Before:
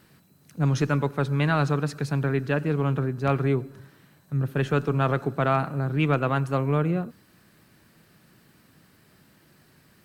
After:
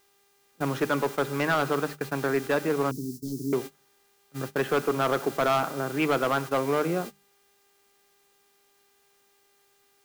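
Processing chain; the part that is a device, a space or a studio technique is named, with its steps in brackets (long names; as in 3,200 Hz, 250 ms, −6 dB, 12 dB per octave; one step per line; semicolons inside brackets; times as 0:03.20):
aircraft radio (band-pass filter 330–2,400 Hz; hard clipping −22 dBFS, distortion −11 dB; hum with harmonics 400 Hz, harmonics 19, −51 dBFS −4 dB per octave; white noise bed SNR 17 dB; noise gate −37 dBFS, range −22 dB)
0:02.91–0:03.53: elliptic band-stop filter 300–5,200 Hz, stop band 40 dB
mains-hum notches 50/100/150/200 Hz
level +4 dB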